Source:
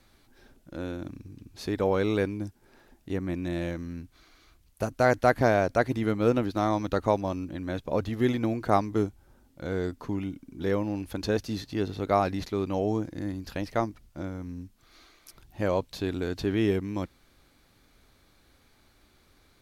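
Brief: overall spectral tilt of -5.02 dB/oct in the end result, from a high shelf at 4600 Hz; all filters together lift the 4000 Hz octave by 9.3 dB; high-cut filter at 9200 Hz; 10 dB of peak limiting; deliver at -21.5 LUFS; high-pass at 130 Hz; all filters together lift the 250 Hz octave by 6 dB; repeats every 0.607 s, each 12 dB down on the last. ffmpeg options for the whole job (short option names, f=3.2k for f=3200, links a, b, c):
-af "highpass=130,lowpass=9.2k,equalizer=f=250:t=o:g=8,equalizer=f=4k:t=o:g=8.5,highshelf=f=4.6k:g=5,alimiter=limit=-14dB:level=0:latency=1,aecho=1:1:607|1214|1821:0.251|0.0628|0.0157,volume=6dB"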